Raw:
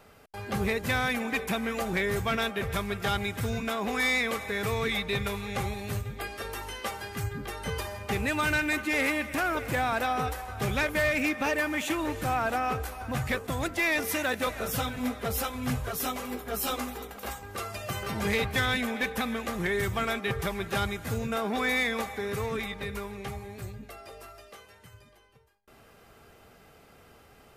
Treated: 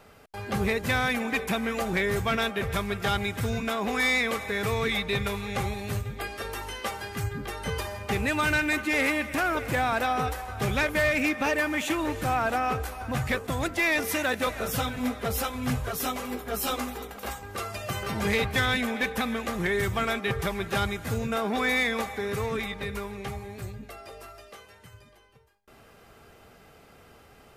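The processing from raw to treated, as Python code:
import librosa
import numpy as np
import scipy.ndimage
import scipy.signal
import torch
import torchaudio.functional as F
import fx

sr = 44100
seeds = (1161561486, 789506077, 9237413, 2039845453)

y = fx.high_shelf(x, sr, hz=12000.0, db=-3.5)
y = y * 10.0 ** (2.0 / 20.0)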